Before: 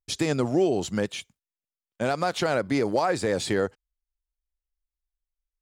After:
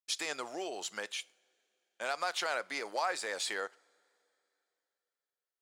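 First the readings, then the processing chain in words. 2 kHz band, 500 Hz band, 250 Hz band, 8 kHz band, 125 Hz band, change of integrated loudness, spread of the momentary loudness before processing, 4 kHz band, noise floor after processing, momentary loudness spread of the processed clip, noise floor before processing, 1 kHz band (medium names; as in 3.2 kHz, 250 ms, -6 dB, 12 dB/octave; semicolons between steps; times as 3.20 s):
-4.0 dB, -15.0 dB, -23.0 dB, -3.5 dB, under -35 dB, -10.5 dB, 7 LU, -3.5 dB, under -85 dBFS, 7 LU, under -85 dBFS, -7.5 dB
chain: high-pass 940 Hz 12 dB/octave; two-slope reverb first 0.41 s, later 3.3 s, from -20 dB, DRR 19.5 dB; trim -3.5 dB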